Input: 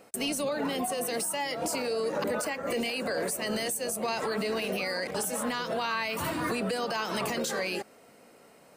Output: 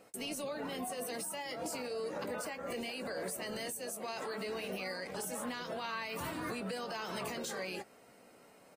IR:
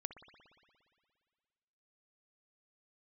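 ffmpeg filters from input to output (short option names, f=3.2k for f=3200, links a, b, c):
-filter_complex "[0:a]asettb=1/sr,asplit=3[a][b][c];[a]atrim=end=3.864[d];[b]atrim=start=3.86:end=4.46,asetpts=PTS-STARTPTS,afade=t=in:d=0.004:c=qsin,afade=t=out:st=0.596:d=0.004:c=qsin,highpass=f=210:p=1[e];[c]atrim=start=4.456[f];[d][e]acrossfade=d=0.004:c1=hsin:c2=qsin[g];[g][f]acrossfade=d=0.004:c1=qsin:c2=hsin,alimiter=level_in=3dB:limit=-24dB:level=0:latency=1:release=152,volume=-3dB,asplit=2[h][i];[i]adelay=16,volume=-11dB[j];[h][j]amix=inputs=2:normalize=0,volume=-5.5dB" -ar 48000 -c:a aac -b:a 48k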